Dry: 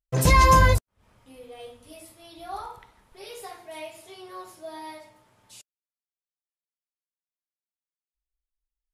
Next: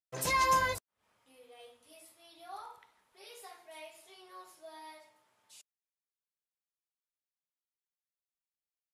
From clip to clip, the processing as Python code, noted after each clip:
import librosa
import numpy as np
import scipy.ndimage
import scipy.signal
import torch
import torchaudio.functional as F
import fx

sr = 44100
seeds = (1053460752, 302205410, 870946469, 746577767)

y = fx.highpass(x, sr, hz=700.0, slope=6)
y = y * 10.0 ** (-8.0 / 20.0)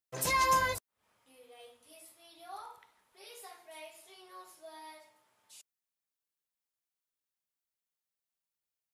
y = fx.high_shelf(x, sr, hz=10000.0, db=5.0)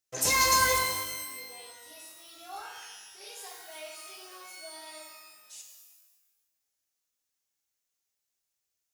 y = fx.graphic_eq_15(x, sr, hz=(160, 1000, 6300), db=(-7, -4, 8))
y = fx.rev_shimmer(y, sr, seeds[0], rt60_s=1.2, semitones=12, shimmer_db=-2, drr_db=2.5)
y = y * 10.0 ** (3.0 / 20.0)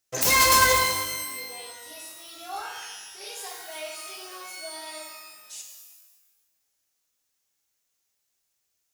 y = fx.self_delay(x, sr, depth_ms=0.086)
y = y * 10.0 ** (7.0 / 20.0)